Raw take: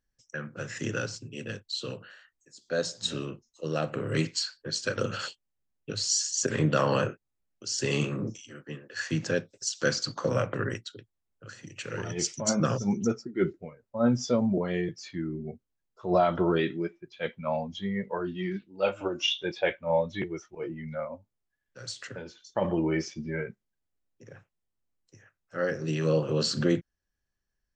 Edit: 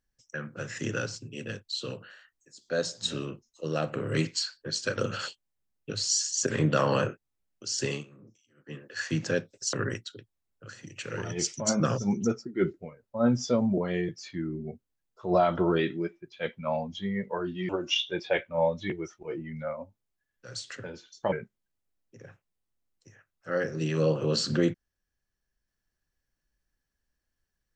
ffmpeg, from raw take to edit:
-filter_complex "[0:a]asplit=6[a][b][c][d][e][f];[a]atrim=end=8.04,asetpts=PTS-STARTPTS,afade=t=out:st=7.83:d=0.21:silence=0.0841395[g];[b]atrim=start=8.04:end=8.56,asetpts=PTS-STARTPTS,volume=-21.5dB[h];[c]atrim=start=8.56:end=9.732,asetpts=PTS-STARTPTS,afade=t=in:d=0.21:silence=0.0841395[i];[d]atrim=start=10.528:end=18.492[j];[e]atrim=start=19.008:end=22.642[k];[f]atrim=start=23.388[l];[g][h][i]concat=n=3:v=0:a=1[m];[m][j]acrossfade=d=0.004:c1=hsin:c2=hsin[n];[n][k]acrossfade=d=0.004:c1=hsin:c2=hsin[o];[o][l]acrossfade=d=0.004:c1=hsin:c2=hsin"

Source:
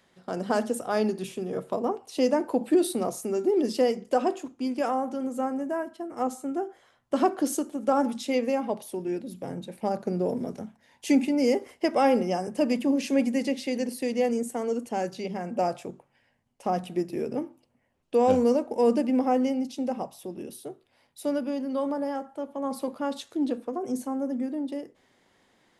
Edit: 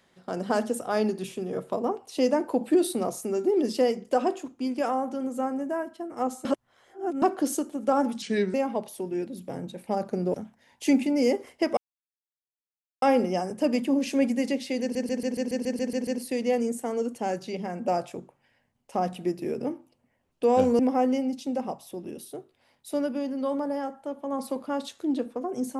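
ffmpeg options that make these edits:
-filter_complex "[0:a]asplit=17[a][b][c][d][e][f][g][h][i][j][k][l][m][n][o][p][q];[a]atrim=end=6.452[r];[b]atrim=start=6.448:end=7.222,asetpts=PTS-STARTPTS,areverse[s];[c]atrim=start=7.218:end=8.224[t];[d]atrim=start=8.22:end=8.48,asetpts=PTS-STARTPTS,asetrate=35721,aresample=44100[u];[e]atrim=start=8.476:end=10.282[v];[f]atrim=start=10.558:end=11.99,asetpts=PTS-STARTPTS,afade=t=out:st=1.428:d=0.004:c=hsin,apad=pad_dur=1.25[w];[g]atrim=start=11.99:end=13.922,asetpts=PTS-STARTPTS,afade=t=in:d=0.004:c=hsin[x];[h]atrim=start=13.778:end=13.922[y];[i]atrim=start=13.778:end=13.922[z];[j]atrim=start=13.778:end=13.922[aa];[k]atrim=start=13.778:end=13.922[ab];[l]atrim=start=13.778:end=13.922[ac];[m]atrim=start=13.778:end=13.922[ad];[n]atrim=start=13.778:end=13.922[ae];[o]atrim=start=13.778:end=13.922[af];[p]atrim=start=13.778:end=18.502[ag];[q]atrim=start=19.108[ah];[r][s]acrossfade=d=0.004:c1=hsin:c2=hsin[ai];[ai][t]acrossfade=d=0.004:c1=hsin:c2=hsin[aj];[aj][u]acrossfade=d=0.004:c1=hsin:c2=hsin[ak];[ak][v]acrossfade=d=0.004:c1=hsin:c2=hsin[al];[w][x]concat=n=2:v=0:a=1[am];[al][am]acrossfade=d=0.004:c1=hsin:c2=hsin[an];[an][y]acrossfade=d=0.004:c1=hsin:c2=hsin[ao];[ao][z]acrossfade=d=0.004:c1=hsin:c2=hsin[ap];[ap][aa]acrossfade=d=0.004:c1=hsin:c2=hsin[aq];[aq][ab]acrossfade=d=0.004:c1=hsin:c2=hsin[ar];[ar][ac]acrossfade=d=0.004:c1=hsin:c2=hsin[as];[as][ad]acrossfade=d=0.004:c1=hsin:c2=hsin[at];[at][ae]acrossfade=d=0.004:c1=hsin:c2=hsin[au];[au][af]acrossfade=d=0.004:c1=hsin:c2=hsin[av];[av][ag]acrossfade=d=0.004:c1=hsin:c2=hsin[aw];[aw][ah]acrossfade=d=0.004:c1=hsin:c2=hsin"

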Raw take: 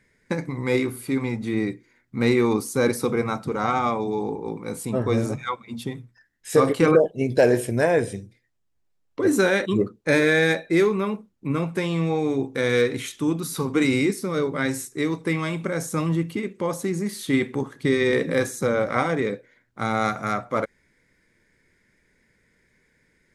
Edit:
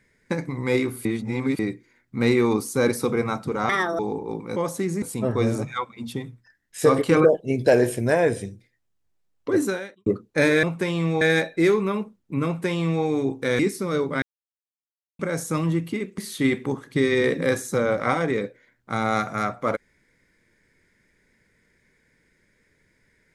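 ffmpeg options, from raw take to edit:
-filter_complex "[0:a]asplit=14[a][b][c][d][e][f][g][h][i][j][k][l][m][n];[a]atrim=end=1.052[o];[b]atrim=start=1.048:end=1.592,asetpts=PTS-STARTPTS,areverse[p];[c]atrim=start=1.588:end=3.694[q];[d]atrim=start=3.69:end=4.16,asetpts=PTS-STARTPTS,asetrate=68796,aresample=44100[r];[e]atrim=start=4.156:end=4.732[s];[f]atrim=start=16.608:end=17.072[t];[g]atrim=start=4.728:end=9.77,asetpts=PTS-STARTPTS,afade=t=out:st=4.522:d=0.52:c=qua[u];[h]atrim=start=9.77:end=10.342,asetpts=PTS-STARTPTS,afade=t=in:d=0.004:c=hsin[v];[i]atrim=start=11.588:end=12.172[w];[j]atrim=start=10.338:end=12.722[x];[k]atrim=start=14.018:end=14.65,asetpts=PTS-STARTPTS,afade=t=out:st=0.628:d=0.004:c=hsin[y];[l]atrim=start=14.65:end=15.62,asetpts=PTS-STARTPTS,volume=0[z];[m]atrim=start=15.62:end=16.612,asetpts=PTS-STARTPTS,afade=t=in:d=0.004:c=hsin[aa];[n]atrim=start=17.068[ab];[o][p]acrossfade=d=0.004:c1=hsin:c2=hsin[ac];[ac][q]acrossfade=d=0.004:c1=hsin:c2=hsin[ad];[ad][r]acrossfade=d=0.004:c1=hsin:c2=hsin[ae];[ae][s]acrossfade=d=0.004:c1=hsin:c2=hsin[af];[af][t]acrossfade=d=0.004:c1=hsin:c2=hsin[ag];[u][v]concat=n=2:v=0:a=1[ah];[ag][ah]acrossfade=d=0.004:c1=hsin:c2=hsin[ai];[ai][w]acrossfade=d=0.004:c1=hsin:c2=hsin[aj];[aj][x]acrossfade=d=0.004:c1=hsin:c2=hsin[ak];[y][z][aa]concat=n=3:v=0:a=1[al];[ak][al]acrossfade=d=0.004:c1=hsin:c2=hsin[am];[am][ab]acrossfade=d=0.004:c1=hsin:c2=hsin"

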